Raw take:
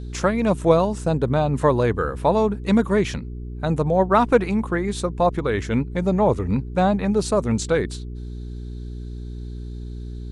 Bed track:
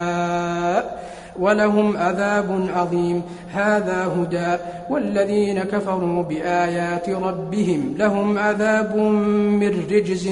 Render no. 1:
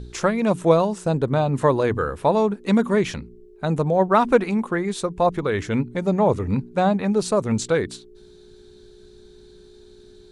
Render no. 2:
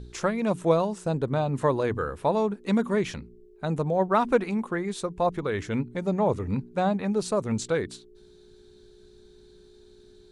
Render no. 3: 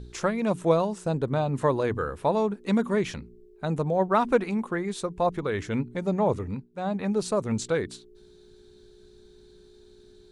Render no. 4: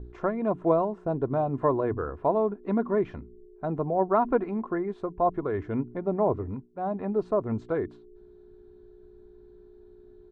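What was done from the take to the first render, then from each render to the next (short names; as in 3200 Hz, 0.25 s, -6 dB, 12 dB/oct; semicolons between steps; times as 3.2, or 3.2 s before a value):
de-hum 60 Hz, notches 5
gain -5.5 dB
6.37–7.03 dip -15 dB, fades 0.31 s
Chebyshev low-pass 1000 Hz, order 2; comb 2.9 ms, depth 40%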